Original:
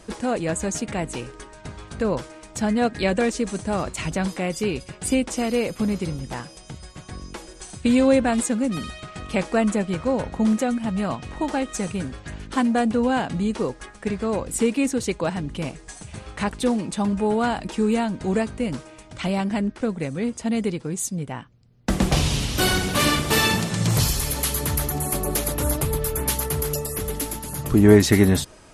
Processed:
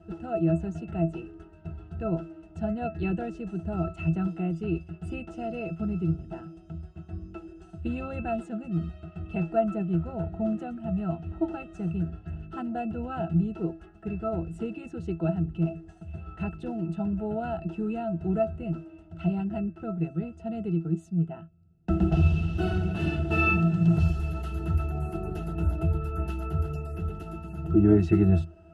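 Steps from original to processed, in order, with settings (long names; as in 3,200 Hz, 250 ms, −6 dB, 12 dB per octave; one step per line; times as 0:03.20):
resonances in every octave E, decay 0.18 s
level +7.5 dB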